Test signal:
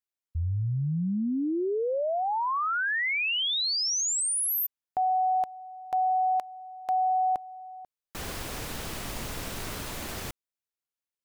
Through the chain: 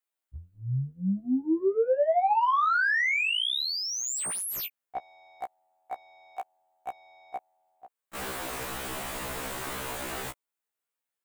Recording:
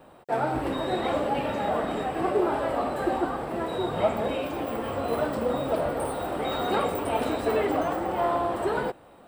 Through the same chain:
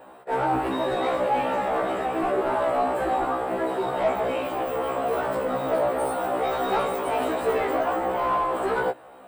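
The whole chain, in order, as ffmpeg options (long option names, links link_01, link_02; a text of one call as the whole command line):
ffmpeg -i in.wav -filter_complex "[0:a]aexciter=amount=4.2:drive=1.9:freq=7400,asplit=2[link_01][link_02];[link_02]highpass=frequency=720:poles=1,volume=17dB,asoftclip=type=tanh:threshold=-11.5dB[link_03];[link_01][link_03]amix=inputs=2:normalize=0,lowpass=frequency=1500:poles=1,volume=-6dB,afftfilt=real='re*1.73*eq(mod(b,3),0)':imag='im*1.73*eq(mod(b,3),0)':win_size=2048:overlap=0.75" out.wav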